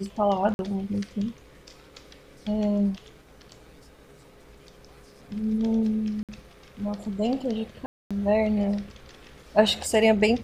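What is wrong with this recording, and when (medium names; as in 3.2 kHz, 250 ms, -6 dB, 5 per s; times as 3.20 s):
0.54–0.59 s: dropout 51 ms
6.23–6.29 s: dropout 57 ms
7.86–8.11 s: dropout 246 ms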